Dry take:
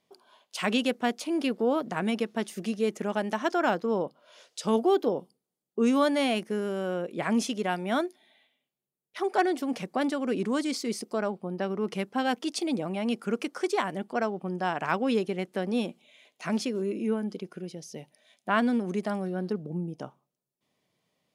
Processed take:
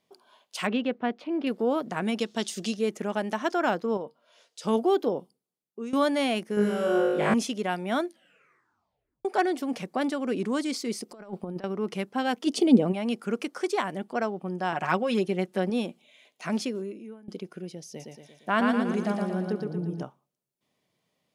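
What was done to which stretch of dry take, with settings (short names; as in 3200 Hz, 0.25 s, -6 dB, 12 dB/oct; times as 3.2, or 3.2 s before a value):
0.67–1.47 air absorption 360 m
2.19–2.77 band shelf 5000 Hz +10.5 dB
3.97–4.62 resonator 230 Hz, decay 0.17 s
5.16–5.93 fade out, to -15.5 dB
6.55–7.34 flutter echo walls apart 3.3 m, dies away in 1.1 s
8.04 tape stop 1.21 s
11.09–11.64 negative-ratio compressor -36 dBFS, ratio -0.5
12.46–12.91 small resonant body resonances 230/410/3000 Hz, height 16 dB -> 13 dB, ringing for 30 ms
14.72–15.7 comb 5.5 ms
16.69–17.28 fade out quadratic, to -20.5 dB
17.88–20.03 feedback echo 0.116 s, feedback 51%, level -3.5 dB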